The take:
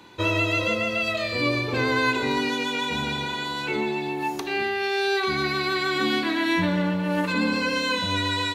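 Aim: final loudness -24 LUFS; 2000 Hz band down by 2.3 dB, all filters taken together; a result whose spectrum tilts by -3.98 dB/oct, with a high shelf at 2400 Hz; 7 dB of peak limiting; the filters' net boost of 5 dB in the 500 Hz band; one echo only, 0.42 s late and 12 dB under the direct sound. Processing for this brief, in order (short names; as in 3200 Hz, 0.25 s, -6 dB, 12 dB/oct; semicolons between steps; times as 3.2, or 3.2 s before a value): bell 500 Hz +6.5 dB; bell 2000 Hz -9 dB; high shelf 2400 Hz +9 dB; limiter -16.5 dBFS; echo 0.42 s -12 dB; gain +0.5 dB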